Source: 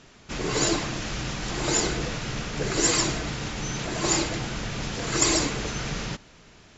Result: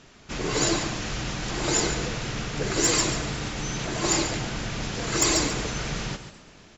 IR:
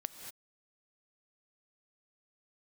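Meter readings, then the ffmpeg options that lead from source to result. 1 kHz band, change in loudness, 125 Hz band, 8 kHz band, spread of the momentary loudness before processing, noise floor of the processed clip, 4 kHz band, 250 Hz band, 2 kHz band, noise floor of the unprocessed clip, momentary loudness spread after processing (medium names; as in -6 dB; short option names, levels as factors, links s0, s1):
+0.5 dB, +0.5 dB, +0.5 dB, no reading, 10 LU, -51 dBFS, +0.5 dB, 0.0 dB, +0.5 dB, -53 dBFS, 10 LU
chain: -filter_complex "[0:a]asplit=5[s0][s1][s2][s3][s4];[s1]adelay=246,afreqshift=57,volume=0.0631[s5];[s2]adelay=492,afreqshift=114,volume=0.0398[s6];[s3]adelay=738,afreqshift=171,volume=0.0251[s7];[s4]adelay=984,afreqshift=228,volume=0.0158[s8];[s0][s5][s6][s7][s8]amix=inputs=5:normalize=0,asoftclip=type=hard:threshold=0.224,asplit=2[s9][s10];[1:a]atrim=start_sample=2205,atrim=end_sample=6615,adelay=140[s11];[s10][s11]afir=irnorm=-1:irlink=0,volume=0.376[s12];[s9][s12]amix=inputs=2:normalize=0"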